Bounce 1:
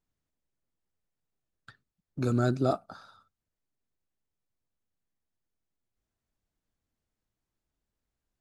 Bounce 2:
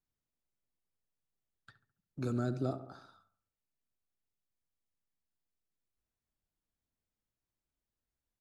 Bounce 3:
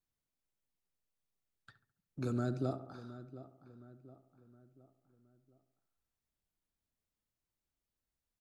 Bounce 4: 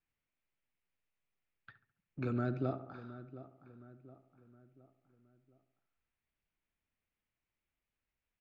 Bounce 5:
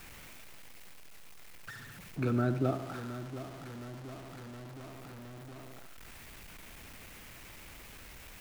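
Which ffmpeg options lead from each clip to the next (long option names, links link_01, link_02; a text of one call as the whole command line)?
ffmpeg -i in.wav -filter_complex "[0:a]asplit=2[link_01][link_02];[link_02]adelay=70,lowpass=frequency=1500:poles=1,volume=-12dB,asplit=2[link_03][link_04];[link_04]adelay=70,lowpass=frequency=1500:poles=1,volume=0.54,asplit=2[link_05][link_06];[link_06]adelay=70,lowpass=frequency=1500:poles=1,volume=0.54,asplit=2[link_07][link_08];[link_08]adelay=70,lowpass=frequency=1500:poles=1,volume=0.54,asplit=2[link_09][link_10];[link_10]adelay=70,lowpass=frequency=1500:poles=1,volume=0.54,asplit=2[link_11][link_12];[link_12]adelay=70,lowpass=frequency=1500:poles=1,volume=0.54[link_13];[link_01][link_03][link_05][link_07][link_09][link_11][link_13]amix=inputs=7:normalize=0,acrossover=split=420[link_14][link_15];[link_15]acompressor=threshold=-32dB:ratio=6[link_16];[link_14][link_16]amix=inputs=2:normalize=0,volume=-7dB" out.wav
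ffmpeg -i in.wav -filter_complex "[0:a]asplit=2[link_01][link_02];[link_02]adelay=717,lowpass=frequency=2300:poles=1,volume=-14.5dB,asplit=2[link_03][link_04];[link_04]adelay=717,lowpass=frequency=2300:poles=1,volume=0.46,asplit=2[link_05][link_06];[link_06]adelay=717,lowpass=frequency=2300:poles=1,volume=0.46,asplit=2[link_07][link_08];[link_08]adelay=717,lowpass=frequency=2300:poles=1,volume=0.46[link_09];[link_01][link_03][link_05][link_07][link_09]amix=inputs=5:normalize=0,volume=-1dB" out.wav
ffmpeg -i in.wav -af "lowpass=frequency=2400:width_type=q:width=2.4" out.wav
ffmpeg -i in.wav -af "aeval=exprs='val(0)+0.5*0.00473*sgn(val(0))':channel_layout=same,volume=4.5dB" out.wav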